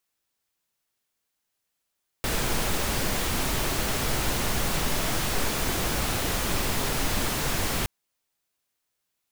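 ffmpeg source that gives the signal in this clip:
-f lavfi -i "anoisesrc=c=pink:a=0.257:d=5.62:r=44100:seed=1"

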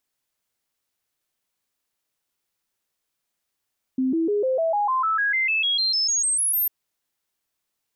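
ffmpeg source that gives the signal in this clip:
-f lavfi -i "aevalsrc='0.112*clip(min(mod(t,0.15),0.15-mod(t,0.15))/0.005,0,1)*sin(2*PI*260*pow(2,floor(t/0.15)/3)*mod(t,0.15))':d=2.7:s=44100"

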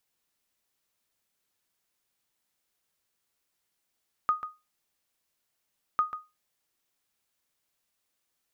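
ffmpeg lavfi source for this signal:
-f lavfi -i "aevalsrc='0.141*(sin(2*PI*1240*mod(t,1.7))*exp(-6.91*mod(t,1.7)/0.24)+0.282*sin(2*PI*1240*max(mod(t,1.7)-0.14,0))*exp(-6.91*max(mod(t,1.7)-0.14,0)/0.24))':d=3.4:s=44100"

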